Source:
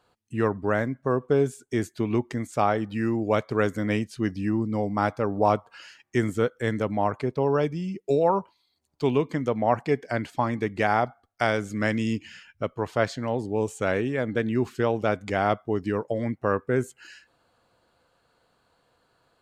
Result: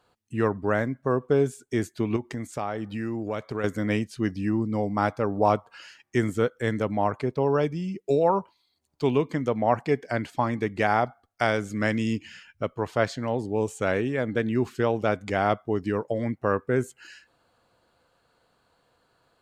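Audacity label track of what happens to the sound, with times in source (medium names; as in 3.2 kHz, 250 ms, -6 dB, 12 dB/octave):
2.160000	3.640000	compression 2.5:1, threshold -28 dBFS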